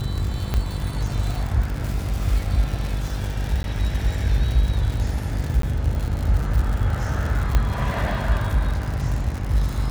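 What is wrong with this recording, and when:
buzz 50 Hz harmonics 16 -27 dBFS
crackle 120/s -26 dBFS
0.54 pop -10 dBFS
3.63–3.64 gap 11 ms
5.62–5.63 gap 13 ms
7.55 pop -7 dBFS

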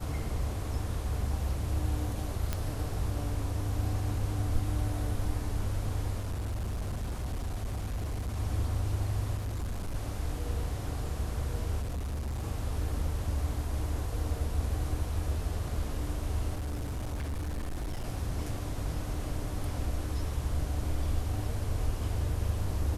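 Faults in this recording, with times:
2.53 pop -16 dBFS
6.19–8.38 clipped -30 dBFS
9.37–9.96 clipped -30.5 dBFS
11.81–12.43 clipped -31 dBFS
16.56–18.04 clipped -31 dBFS

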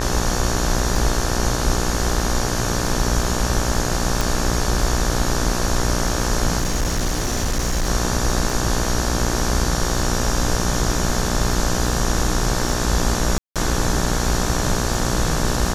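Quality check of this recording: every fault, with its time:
buzz 60 Hz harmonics 30 -24 dBFS
crackle 17/s -26 dBFS
4.21 pop
6.58–7.88 clipped -16.5 dBFS
13.38–13.56 gap 0.177 s

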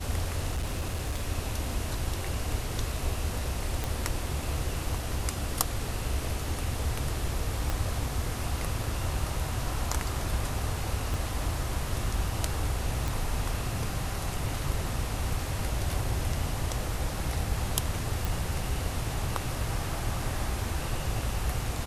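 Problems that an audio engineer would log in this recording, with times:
0.52–1.24 clipped -26.5 dBFS
3.84 pop
7.7 pop -15 dBFS
11.14 pop
13.08 pop
18.25 pop

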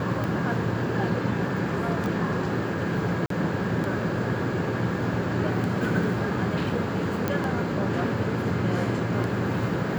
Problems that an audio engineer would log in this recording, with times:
tick 33 1/3 rpm
2.06 pop
3.26–3.3 gap 43 ms
7.28 pop -12 dBFS

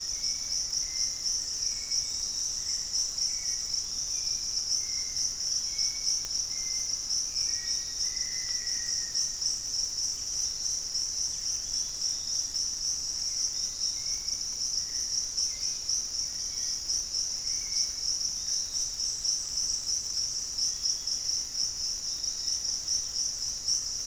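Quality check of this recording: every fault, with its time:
crackle 190/s -39 dBFS
6.25 pop -19 dBFS

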